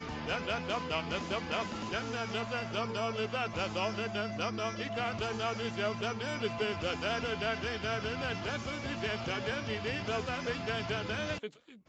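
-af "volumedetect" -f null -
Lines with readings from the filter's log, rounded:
mean_volume: -35.3 dB
max_volume: -19.1 dB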